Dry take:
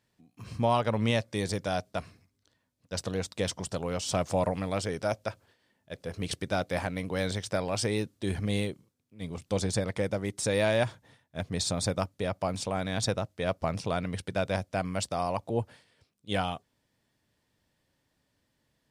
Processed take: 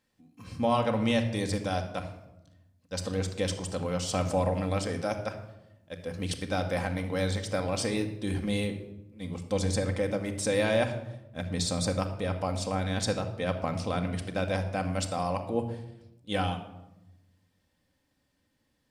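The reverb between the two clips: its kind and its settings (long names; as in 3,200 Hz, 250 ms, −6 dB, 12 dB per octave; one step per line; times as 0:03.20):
rectangular room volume 3,400 cubic metres, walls furnished, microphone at 2.1 metres
level −1.5 dB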